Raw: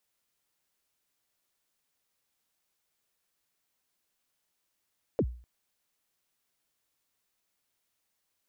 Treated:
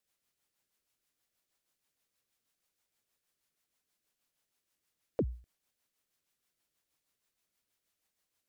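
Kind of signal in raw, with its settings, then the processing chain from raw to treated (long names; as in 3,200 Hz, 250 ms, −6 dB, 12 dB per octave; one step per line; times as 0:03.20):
synth kick length 0.25 s, from 580 Hz, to 60 Hz, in 61 ms, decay 0.43 s, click off, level −20 dB
rotating-speaker cabinet horn 6.3 Hz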